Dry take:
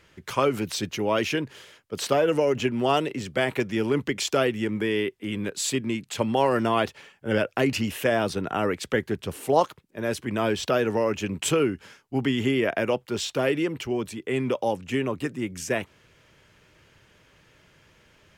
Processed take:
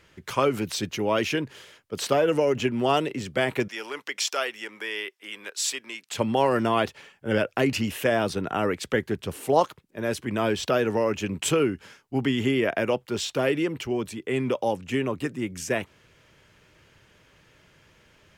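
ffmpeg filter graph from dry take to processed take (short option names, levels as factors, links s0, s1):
-filter_complex "[0:a]asettb=1/sr,asplit=3[s0][s1][s2];[s0]atrim=end=3.684[s3];[s1]atrim=start=3.68:end=6.11,asetpts=PTS-STARTPTS,afade=t=in:d=0.004:c=qsin,afade=t=out:st=2.426:d=0.004:c=qsin,highpass=830,equalizer=f=5500:t=o:w=0.23:g=6[s4];[s2]atrim=start=6.106[s5];[s3][s4]acrossfade=d=0.004:c1=hsin:c2=qsin[s6];[s6][s5]acrossfade=d=0.004:c1=qsin:c2=hsin"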